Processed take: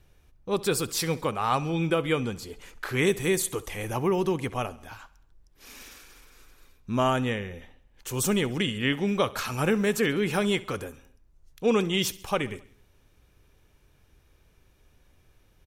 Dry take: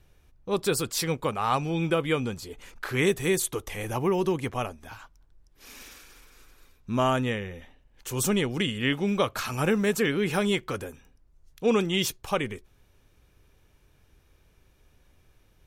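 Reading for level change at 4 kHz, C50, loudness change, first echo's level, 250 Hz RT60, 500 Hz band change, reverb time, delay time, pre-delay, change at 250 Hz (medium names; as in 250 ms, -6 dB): 0.0 dB, no reverb, 0.0 dB, -20.0 dB, no reverb, 0.0 dB, no reverb, 67 ms, no reverb, 0.0 dB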